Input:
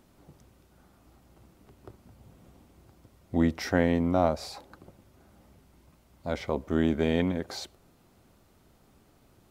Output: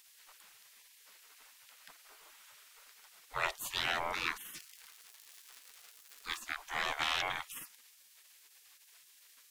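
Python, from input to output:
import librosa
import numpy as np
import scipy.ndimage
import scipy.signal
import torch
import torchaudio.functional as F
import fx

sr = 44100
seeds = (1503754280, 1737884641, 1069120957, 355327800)

y = fx.fold_sine(x, sr, drive_db=8, ceiling_db=-8.5)
y = fx.dmg_crackle(y, sr, seeds[0], per_s=260.0, level_db=-38.0, at=(4.55, 6.39), fade=0.02)
y = fx.spec_gate(y, sr, threshold_db=-25, keep='weak')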